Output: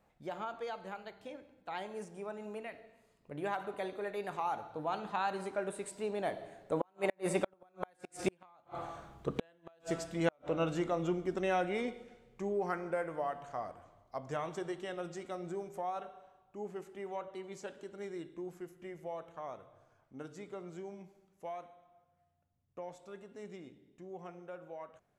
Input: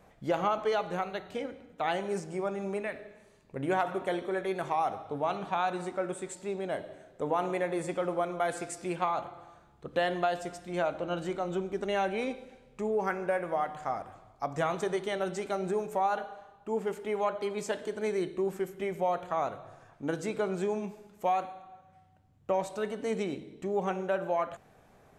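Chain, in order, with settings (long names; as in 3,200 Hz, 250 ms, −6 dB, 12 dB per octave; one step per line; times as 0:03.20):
source passing by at 0:08.64, 24 m/s, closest 20 metres
gate with flip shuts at −27 dBFS, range −40 dB
level +8.5 dB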